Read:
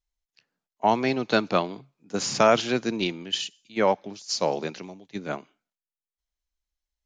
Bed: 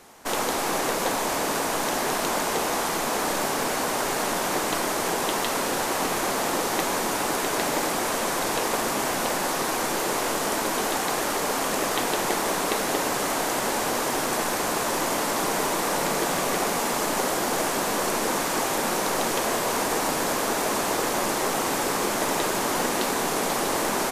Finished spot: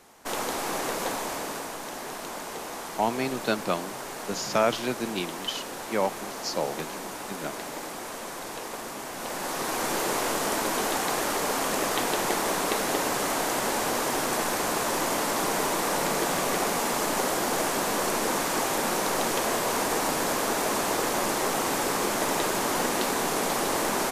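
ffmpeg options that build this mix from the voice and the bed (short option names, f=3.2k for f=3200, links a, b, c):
-filter_complex "[0:a]adelay=2150,volume=-4.5dB[a];[1:a]volume=5dB,afade=t=out:st=1.05:d=0.73:silence=0.473151,afade=t=in:st=9.12:d=0.82:silence=0.334965[b];[a][b]amix=inputs=2:normalize=0"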